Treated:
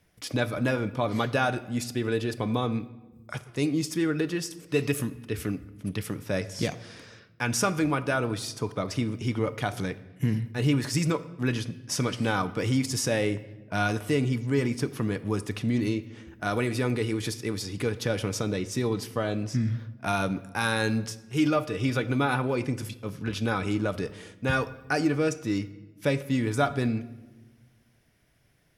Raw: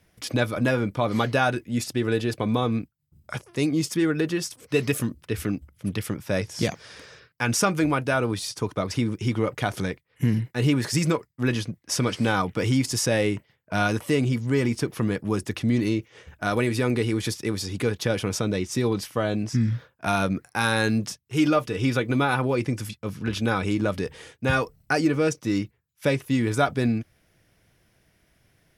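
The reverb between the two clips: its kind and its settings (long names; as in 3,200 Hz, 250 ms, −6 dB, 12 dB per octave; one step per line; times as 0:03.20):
rectangular room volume 660 cubic metres, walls mixed, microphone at 0.32 metres
level −3.5 dB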